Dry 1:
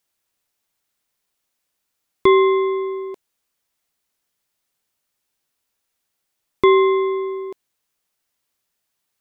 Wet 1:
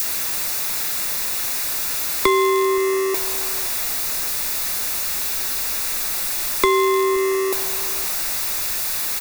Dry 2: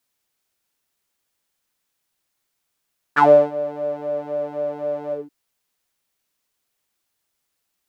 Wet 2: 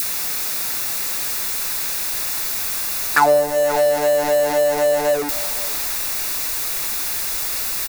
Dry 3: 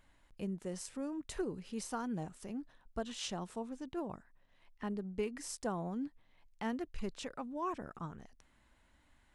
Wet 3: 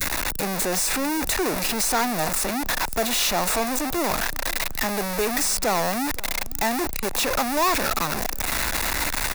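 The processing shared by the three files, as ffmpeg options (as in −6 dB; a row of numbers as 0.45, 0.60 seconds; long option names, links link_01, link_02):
-filter_complex "[0:a]aeval=exprs='val(0)+0.5*0.0531*sgn(val(0))':channel_layout=same,asplit=2[link_01][link_02];[link_02]adelay=519,volume=-21dB,highshelf=frequency=4000:gain=-11.7[link_03];[link_01][link_03]amix=inputs=2:normalize=0,asubboost=boost=3:cutoff=64,acrossover=split=88|230|4900[link_04][link_05][link_06][link_07];[link_04]acompressor=threshold=-36dB:ratio=4[link_08];[link_05]acompressor=threshold=-42dB:ratio=4[link_09];[link_06]acompressor=threshold=-23dB:ratio=4[link_10];[link_07]acompressor=threshold=-44dB:ratio=4[link_11];[link_08][link_09][link_10][link_11]amix=inputs=4:normalize=0,adynamicequalizer=threshold=0.00891:dfrequency=740:dqfactor=1.5:tfrequency=740:tqfactor=1.5:attack=5:release=100:ratio=0.375:range=3:mode=boostabove:tftype=bell,asplit=2[link_12][link_13];[link_13]adynamicsmooth=sensitivity=7:basefreq=940,volume=-2.5dB[link_14];[link_12][link_14]amix=inputs=2:normalize=0,bandreject=frequency=3100:width=5.8,crystalizer=i=6.5:c=0,volume=-1.5dB"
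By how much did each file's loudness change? −2.0, +1.5, +18.5 LU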